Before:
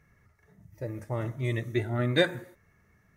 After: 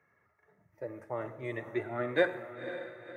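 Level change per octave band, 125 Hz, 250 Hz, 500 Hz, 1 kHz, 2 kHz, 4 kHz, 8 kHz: −15.5 dB, −6.0 dB, −1.5 dB, 0.0 dB, −2.5 dB, −12.0 dB, can't be measured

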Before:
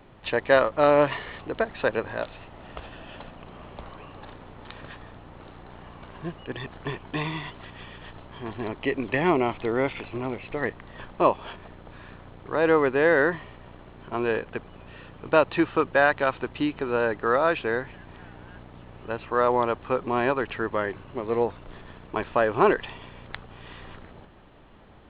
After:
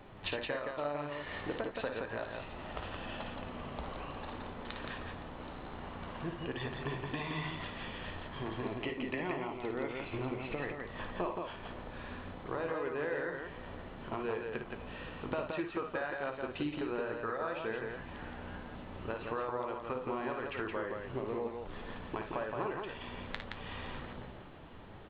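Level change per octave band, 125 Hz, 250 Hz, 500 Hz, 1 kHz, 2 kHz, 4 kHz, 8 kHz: −7.0 dB, −10.5 dB, −13.5 dB, −12.5 dB, −12.0 dB, −6.0 dB, can't be measured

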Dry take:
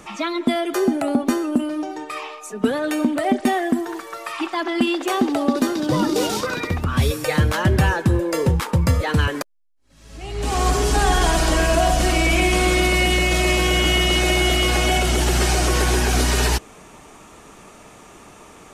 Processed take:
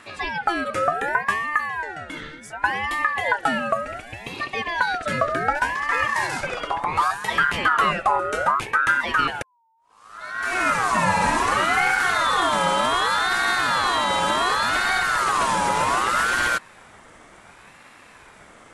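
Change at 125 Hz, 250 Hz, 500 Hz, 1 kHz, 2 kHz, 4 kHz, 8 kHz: −16.0, −13.0, −6.5, +4.0, +3.0, −4.5, −7.0 decibels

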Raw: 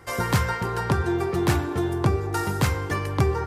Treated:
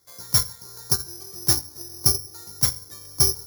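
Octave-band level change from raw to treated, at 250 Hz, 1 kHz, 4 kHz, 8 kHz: −13.0, −13.5, +10.5, +14.0 decibels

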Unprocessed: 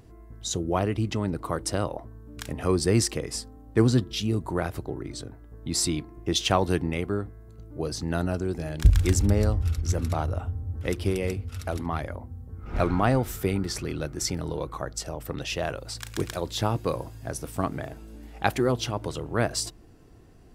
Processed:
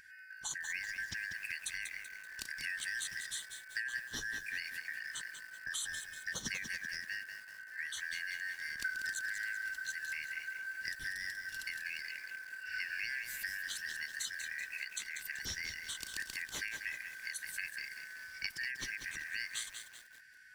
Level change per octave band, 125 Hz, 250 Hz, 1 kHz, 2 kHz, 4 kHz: −35.5, −32.5, −28.0, +2.5, −9.0 decibels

